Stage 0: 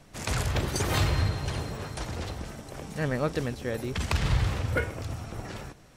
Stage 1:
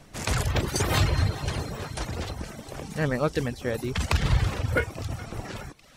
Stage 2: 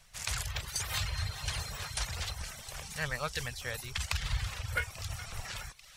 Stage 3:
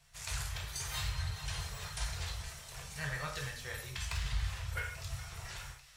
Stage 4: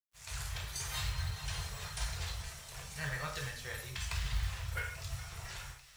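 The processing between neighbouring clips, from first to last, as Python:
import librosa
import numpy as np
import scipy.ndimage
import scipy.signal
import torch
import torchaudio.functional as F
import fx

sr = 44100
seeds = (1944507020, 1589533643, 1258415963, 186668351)

y1 = fx.echo_thinned(x, sr, ms=420, feedback_pct=76, hz=800.0, wet_db=-19)
y1 = fx.dereverb_blind(y1, sr, rt60_s=0.57)
y1 = y1 * librosa.db_to_amplitude(3.5)
y2 = fx.tone_stack(y1, sr, knobs='10-0-10')
y2 = fx.rider(y2, sr, range_db=4, speed_s=0.5)
y3 = 10.0 ** (-19.5 / 20.0) * np.tanh(y2 / 10.0 ** (-19.5 / 20.0))
y3 = fx.rev_gated(y3, sr, seeds[0], gate_ms=220, shape='falling', drr_db=-1.5)
y3 = y3 * librosa.db_to_amplitude(-7.5)
y4 = fx.fade_in_head(y3, sr, length_s=0.53)
y4 = fx.quant_companded(y4, sr, bits=6)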